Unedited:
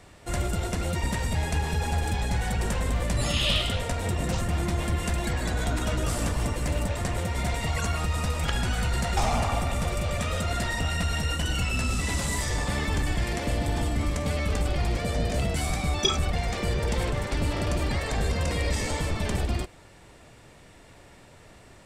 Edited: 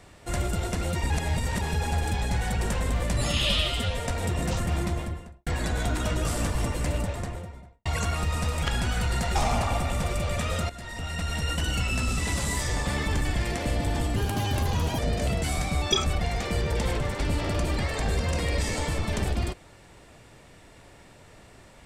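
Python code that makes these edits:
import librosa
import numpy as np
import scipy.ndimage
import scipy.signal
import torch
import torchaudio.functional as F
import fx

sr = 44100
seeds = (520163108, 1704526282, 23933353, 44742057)

y = fx.studio_fade_out(x, sr, start_s=4.57, length_s=0.71)
y = fx.studio_fade_out(y, sr, start_s=6.65, length_s=1.02)
y = fx.edit(y, sr, fx.reverse_span(start_s=1.1, length_s=0.51),
    fx.stretch_span(start_s=3.49, length_s=0.37, factor=1.5),
    fx.fade_in_from(start_s=10.51, length_s=0.85, floor_db=-16.5),
    fx.speed_span(start_s=13.97, length_s=1.14, speed=1.37), tone=tone)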